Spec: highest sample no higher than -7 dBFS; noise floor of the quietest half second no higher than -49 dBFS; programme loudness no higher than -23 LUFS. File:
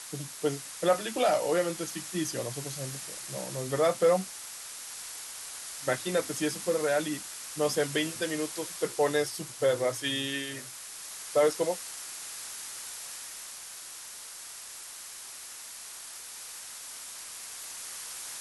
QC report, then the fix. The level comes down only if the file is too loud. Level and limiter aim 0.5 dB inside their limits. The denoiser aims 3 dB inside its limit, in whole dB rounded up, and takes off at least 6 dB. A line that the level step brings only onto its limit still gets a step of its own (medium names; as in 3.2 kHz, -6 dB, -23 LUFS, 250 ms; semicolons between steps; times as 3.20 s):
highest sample -13.0 dBFS: pass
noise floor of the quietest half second -44 dBFS: fail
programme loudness -32.0 LUFS: pass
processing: noise reduction 8 dB, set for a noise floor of -44 dBFS